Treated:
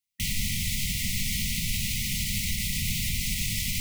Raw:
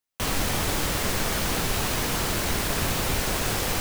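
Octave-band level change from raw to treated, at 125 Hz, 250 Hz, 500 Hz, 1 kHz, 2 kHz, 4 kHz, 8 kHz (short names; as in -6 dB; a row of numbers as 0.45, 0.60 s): -1.5 dB, -5.0 dB, under -40 dB, under -40 dB, -4.5 dB, -1.0 dB, -1.0 dB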